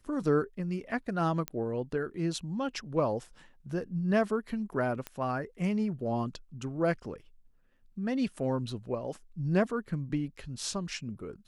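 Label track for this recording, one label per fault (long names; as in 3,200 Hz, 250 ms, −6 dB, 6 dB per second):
1.480000	1.480000	click −17 dBFS
5.070000	5.070000	click −21 dBFS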